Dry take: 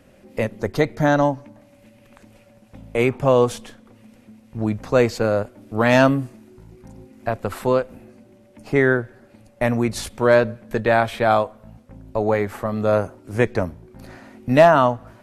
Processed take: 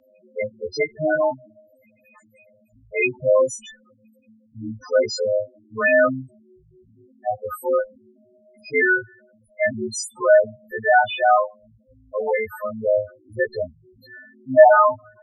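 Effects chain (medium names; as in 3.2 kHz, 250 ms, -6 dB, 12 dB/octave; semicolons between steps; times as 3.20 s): partials quantised in pitch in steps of 3 st; loudest bins only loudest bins 4; three-band isolator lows -12 dB, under 480 Hz, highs -14 dB, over 5.9 kHz; trim +4 dB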